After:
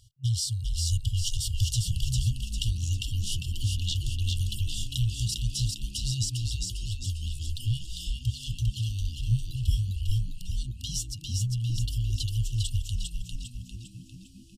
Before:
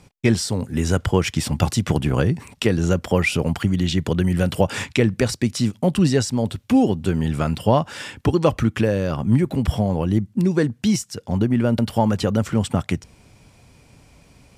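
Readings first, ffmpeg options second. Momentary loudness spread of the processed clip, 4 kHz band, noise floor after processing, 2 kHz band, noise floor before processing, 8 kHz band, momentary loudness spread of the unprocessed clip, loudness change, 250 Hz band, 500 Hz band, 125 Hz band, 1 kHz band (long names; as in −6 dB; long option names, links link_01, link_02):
8 LU, −2.0 dB, −48 dBFS, −20.0 dB, −53 dBFS, −2.0 dB, 4 LU, −9.5 dB, −25.0 dB, below −40 dB, −6.0 dB, below −40 dB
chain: -filter_complex "[0:a]afftfilt=real='re*(1-between(b*sr/4096,130,2800))':imag='im*(1-between(b*sr/4096,130,2800))':win_size=4096:overlap=0.75,asplit=7[link_01][link_02][link_03][link_04][link_05][link_06][link_07];[link_02]adelay=401,afreqshift=-73,volume=-3dB[link_08];[link_03]adelay=802,afreqshift=-146,volume=-9.6dB[link_09];[link_04]adelay=1203,afreqshift=-219,volume=-16.1dB[link_10];[link_05]adelay=1604,afreqshift=-292,volume=-22.7dB[link_11];[link_06]adelay=2005,afreqshift=-365,volume=-29.2dB[link_12];[link_07]adelay=2406,afreqshift=-438,volume=-35.8dB[link_13];[link_01][link_08][link_09][link_10][link_11][link_12][link_13]amix=inputs=7:normalize=0,volume=-4dB"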